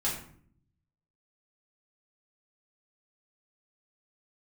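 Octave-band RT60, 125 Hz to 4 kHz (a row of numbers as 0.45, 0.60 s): 1.2, 0.95, 0.60, 0.55, 0.50, 0.35 s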